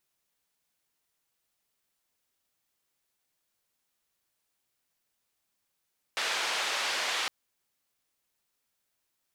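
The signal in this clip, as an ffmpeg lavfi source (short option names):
-f lavfi -i "anoisesrc=c=white:d=1.11:r=44100:seed=1,highpass=f=610,lowpass=f=3900,volume=-18.3dB"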